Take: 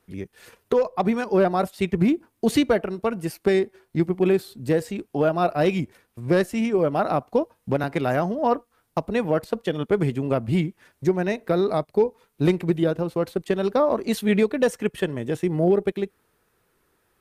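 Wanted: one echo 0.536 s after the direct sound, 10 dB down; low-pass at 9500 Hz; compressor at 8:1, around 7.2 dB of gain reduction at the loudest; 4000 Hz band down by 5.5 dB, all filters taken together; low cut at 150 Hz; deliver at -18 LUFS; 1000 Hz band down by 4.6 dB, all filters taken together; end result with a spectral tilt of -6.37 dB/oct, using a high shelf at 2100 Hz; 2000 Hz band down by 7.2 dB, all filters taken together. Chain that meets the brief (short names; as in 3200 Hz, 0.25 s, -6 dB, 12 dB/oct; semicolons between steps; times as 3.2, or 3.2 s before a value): HPF 150 Hz; LPF 9500 Hz; bell 1000 Hz -6 dB; bell 2000 Hz -8 dB; high shelf 2100 Hz +5 dB; bell 4000 Hz -8.5 dB; compressor 8:1, threshold -23 dBFS; echo 0.536 s -10 dB; gain +11.5 dB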